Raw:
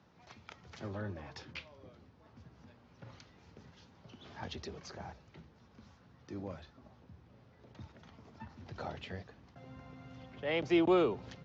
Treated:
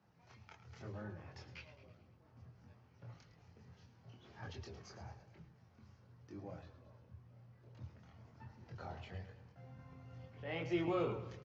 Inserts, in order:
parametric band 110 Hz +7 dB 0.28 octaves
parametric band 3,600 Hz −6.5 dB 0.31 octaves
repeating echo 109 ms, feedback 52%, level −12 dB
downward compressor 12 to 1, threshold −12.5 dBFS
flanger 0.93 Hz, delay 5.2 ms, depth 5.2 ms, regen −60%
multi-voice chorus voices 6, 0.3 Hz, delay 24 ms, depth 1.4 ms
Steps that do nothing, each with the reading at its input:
downward compressor, threshold −12.5 dBFS: peak of its input −17.5 dBFS

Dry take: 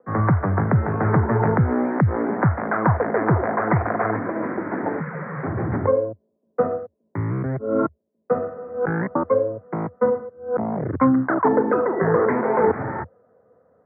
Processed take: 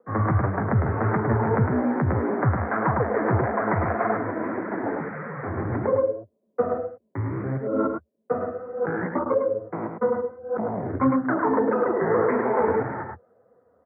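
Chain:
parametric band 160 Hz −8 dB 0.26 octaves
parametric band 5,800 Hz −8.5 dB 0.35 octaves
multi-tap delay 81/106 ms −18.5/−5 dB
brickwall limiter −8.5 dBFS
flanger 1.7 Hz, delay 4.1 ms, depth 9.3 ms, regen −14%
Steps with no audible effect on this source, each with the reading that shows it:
parametric band 5,800 Hz: nothing at its input above 2,000 Hz

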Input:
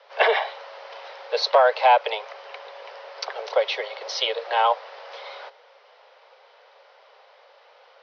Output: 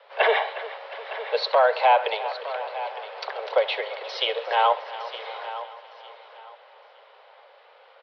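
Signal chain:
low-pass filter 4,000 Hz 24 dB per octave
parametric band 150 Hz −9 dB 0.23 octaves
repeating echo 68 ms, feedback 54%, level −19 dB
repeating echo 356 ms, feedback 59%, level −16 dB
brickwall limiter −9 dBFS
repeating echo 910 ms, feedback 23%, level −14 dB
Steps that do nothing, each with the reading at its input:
parametric band 150 Hz: nothing at its input below 360 Hz

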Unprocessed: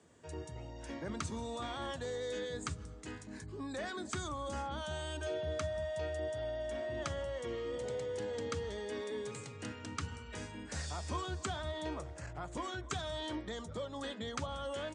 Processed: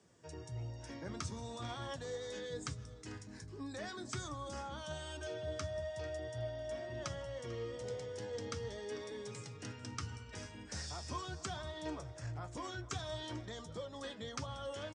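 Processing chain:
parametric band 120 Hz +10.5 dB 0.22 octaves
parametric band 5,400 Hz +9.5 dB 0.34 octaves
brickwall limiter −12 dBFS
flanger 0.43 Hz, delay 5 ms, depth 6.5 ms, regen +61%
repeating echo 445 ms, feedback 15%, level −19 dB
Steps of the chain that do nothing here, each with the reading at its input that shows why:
brickwall limiter −12 dBFS: peak of its input −20.5 dBFS

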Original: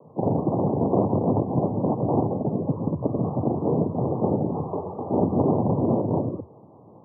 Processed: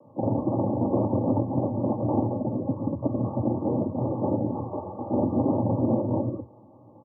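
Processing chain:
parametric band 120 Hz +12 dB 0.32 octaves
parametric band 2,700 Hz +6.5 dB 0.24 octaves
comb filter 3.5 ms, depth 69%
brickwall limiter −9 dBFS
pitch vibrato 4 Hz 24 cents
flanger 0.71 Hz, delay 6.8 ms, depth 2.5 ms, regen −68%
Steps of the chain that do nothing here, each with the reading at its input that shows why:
parametric band 2,700 Hz: nothing at its input above 1,000 Hz

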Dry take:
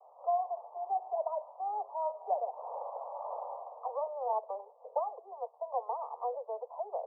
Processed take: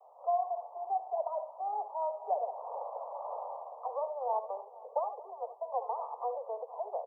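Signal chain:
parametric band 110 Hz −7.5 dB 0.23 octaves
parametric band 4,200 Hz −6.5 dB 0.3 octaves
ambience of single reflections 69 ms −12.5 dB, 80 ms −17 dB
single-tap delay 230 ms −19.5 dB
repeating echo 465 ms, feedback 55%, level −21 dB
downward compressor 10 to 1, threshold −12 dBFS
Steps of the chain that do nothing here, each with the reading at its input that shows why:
parametric band 110 Hz: nothing at its input below 380 Hz
parametric band 4,200 Hz: nothing at its input above 1,300 Hz
downward compressor, threshold −12 dBFS: peak of its input −19.5 dBFS

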